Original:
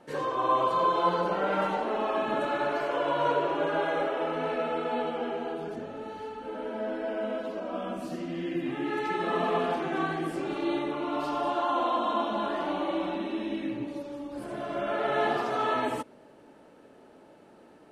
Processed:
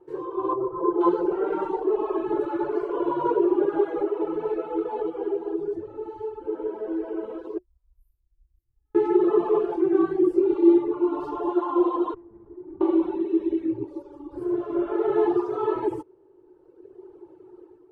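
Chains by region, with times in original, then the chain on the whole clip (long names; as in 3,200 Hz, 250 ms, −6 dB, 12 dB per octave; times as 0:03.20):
0:00.53–0:01.01: low-pass filter 1,200 Hz + parametric band 710 Hz −3 dB 1.5 octaves
0:07.58–0:08.95: inverse Chebyshev band-stop filter 150–6,800 Hz, stop band 50 dB + double-tracking delay 32 ms −4 dB
0:12.14–0:12.81: resonant band-pass 150 Hz, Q 1.5 + tube saturation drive 42 dB, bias 0.45
whole clip: reverb reduction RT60 1.7 s; drawn EQ curve 110 Hz 0 dB, 240 Hz −24 dB, 360 Hz +14 dB, 610 Hz −17 dB, 930 Hz −4 dB, 1,800 Hz −18 dB, 4,000 Hz −21 dB; automatic gain control gain up to 8 dB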